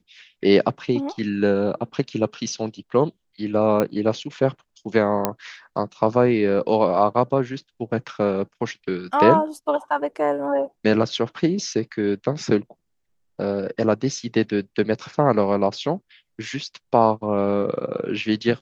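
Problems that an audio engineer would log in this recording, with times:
0:03.80: click −9 dBFS
0:05.25: click −5 dBFS

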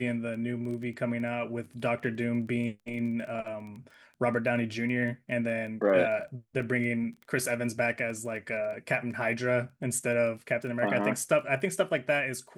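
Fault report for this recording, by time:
surface crackle 12 per second −38 dBFS

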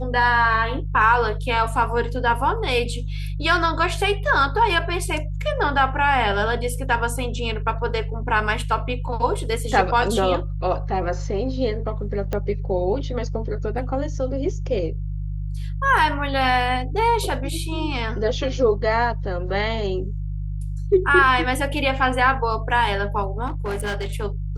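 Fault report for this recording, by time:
mains hum 50 Hz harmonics 3 −27 dBFS
0:12.33: click −13 dBFS
0:23.46–0:24.10: clipping −22 dBFS

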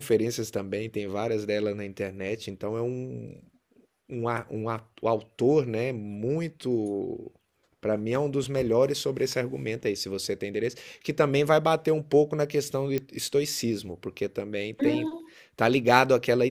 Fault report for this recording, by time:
0:12.98: click −16 dBFS

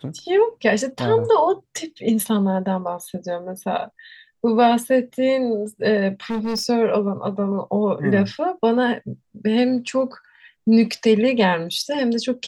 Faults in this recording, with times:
0:06.30–0:06.67: clipping −20.5 dBFS

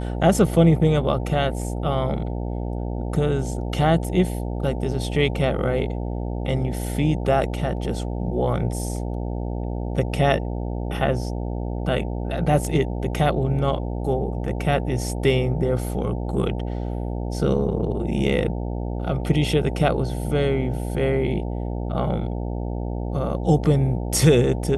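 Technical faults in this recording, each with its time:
mains buzz 60 Hz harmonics 15 −27 dBFS

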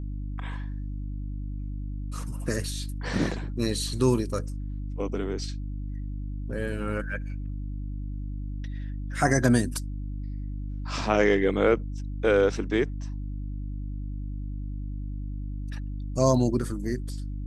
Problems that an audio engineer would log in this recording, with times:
mains hum 50 Hz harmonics 6 −33 dBFS

